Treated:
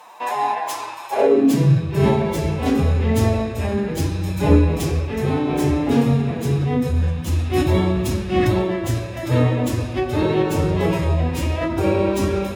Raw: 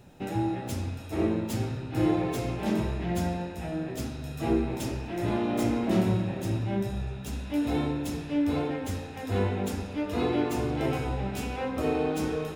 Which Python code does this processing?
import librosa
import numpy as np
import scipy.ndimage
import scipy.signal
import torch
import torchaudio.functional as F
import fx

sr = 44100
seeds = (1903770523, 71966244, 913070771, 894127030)

y = fx.rider(x, sr, range_db=10, speed_s=2.0)
y = fx.pitch_keep_formants(y, sr, semitones=4.0)
y = fx.filter_sweep_highpass(y, sr, from_hz=910.0, to_hz=60.0, start_s=1.07, end_s=1.98, q=5.7)
y = y * 10.0 ** (8.0 / 20.0)